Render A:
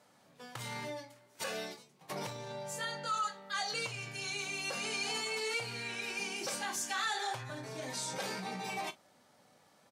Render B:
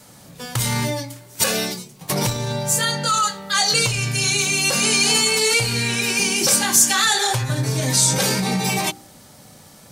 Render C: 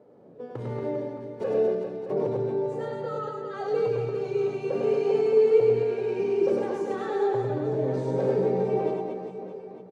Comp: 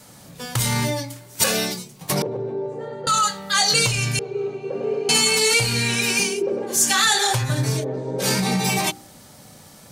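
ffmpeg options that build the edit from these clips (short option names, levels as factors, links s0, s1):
-filter_complex "[2:a]asplit=4[s0][s1][s2][s3];[1:a]asplit=5[s4][s5][s6][s7][s8];[s4]atrim=end=2.222[s9];[s0]atrim=start=2.218:end=3.072[s10];[s5]atrim=start=3.068:end=4.192[s11];[s1]atrim=start=4.188:end=5.092[s12];[s6]atrim=start=5.088:end=6.43[s13];[s2]atrim=start=6.19:end=6.9[s14];[s7]atrim=start=6.66:end=7.85[s15];[s3]atrim=start=7.75:end=8.28[s16];[s8]atrim=start=8.18[s17];[s9][s10]acrossfade=d=0.004:c1=hsin:c2=hsin[s18];[s18][s11]acrossfade=d=0.004:c1=hsin:c2=hsin[s19];[s19][s12]acrossfade=d=0.004:c1=hsin:c2=hsin[s20];[s20][s13]acrossfade=d=0.004:c1=hsin:c2=hsin[s21];[s21][s14]acrossfade=d=0.24:c1=tri:c2=tri[s22];[s22][s15]acrossfade=d=0.24:c1=tri:c2=tri[s23];[s23][s16]acrossfade=d=0.1:c1=tri:c2=tri[s24];[s24][s17]acrossfade=d=0.1:c1=tri:c2=tri"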